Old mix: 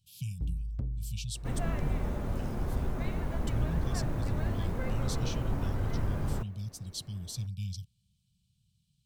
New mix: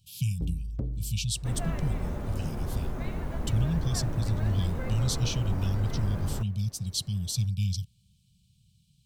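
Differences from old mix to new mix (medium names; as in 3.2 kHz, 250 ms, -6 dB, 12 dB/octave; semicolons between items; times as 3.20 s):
speech +8.5 dB; first sound: add peaking EQ 410 Hz +10.5 dB 2 oct; reverb: on, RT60 1.5 s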